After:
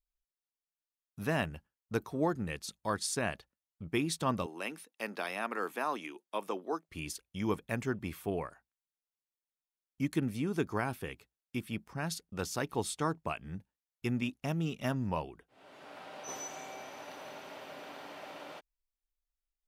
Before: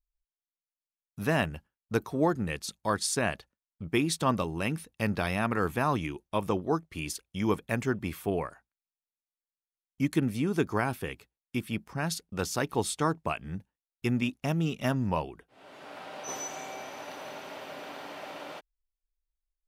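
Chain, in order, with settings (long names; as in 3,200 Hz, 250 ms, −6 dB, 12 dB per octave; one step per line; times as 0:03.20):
0:04.46–0:06.89: Bessel high-pass filter 370 Hz, order 8
level −5 dB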